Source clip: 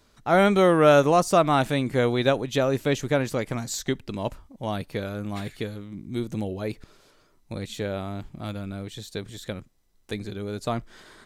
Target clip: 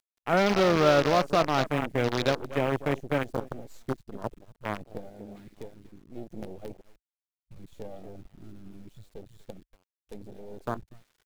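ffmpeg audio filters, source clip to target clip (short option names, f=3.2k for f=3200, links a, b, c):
-filter_complex "[0:a]asettb=1/sr,asplit=3[a][b][c];[a]atrim=end=5.354[d];[b]atrim=start=5.35:end=6.35,asetpts=PTS-STARTPTS,afade=t=in:d=0.004:c=qsin,afade=t=out:st=0.996:d=0.004:c=qsin,asplit=2[e][f];[f]highpass=f=720:p=1,volume=10dB,asoftclip=type=tanh:threshold=-16.5dB[g];[e][g]amix=inputs=2:normalize=0,lowpass=f=3.4k:p=1,volume=-6dB[h];[c]atrim=start=6.346[i];[d][h]acrossfade=d=0.004:c1=hsin:c2=qsin[j];[j][i]acrossfade=d=0.004:c1=qsin:c2=hsin,acrossover=split=320|1700|2600[k][l][m][n];[m]acompressor=mode=upward:threshold=-42dB:ratio=2.5[o];[k][l][o][n]amix=inputs=4:normalize=0,asplit=2[p][q];[q]adelay=240,highpass=300,lowpass=3.4k,asoftclip=type=hard:threshold=-15dB,volume=-8dB[r];[p][r]amix=inputs=2:normalize=0,acrusher=bits=4:dc=4:mix=0:aa=0.000001,afwtdn=0.0282,volume=-5dB"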